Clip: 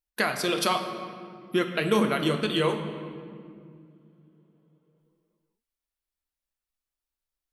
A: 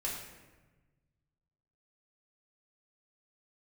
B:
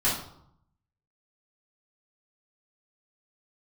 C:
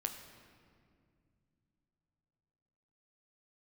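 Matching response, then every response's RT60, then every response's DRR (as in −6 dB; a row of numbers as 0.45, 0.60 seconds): C; 1.2, 0.70, 2.3 seconds; −4.5, −10.5, 4.5 decibels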